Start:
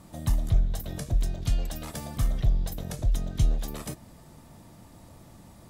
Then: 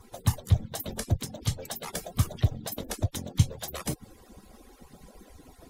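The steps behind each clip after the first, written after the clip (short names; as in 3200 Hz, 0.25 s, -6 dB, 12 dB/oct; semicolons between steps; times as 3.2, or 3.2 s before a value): median-filter separation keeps percussive; gain +5.5 dB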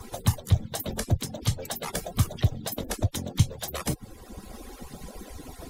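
three-band squash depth 40%; gain +2.5 dB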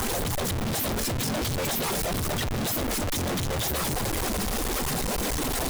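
infinite clipping; gain +2 dB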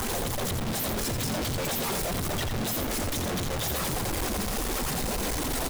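echo 86 ms -7 dB; gain -2.5 dB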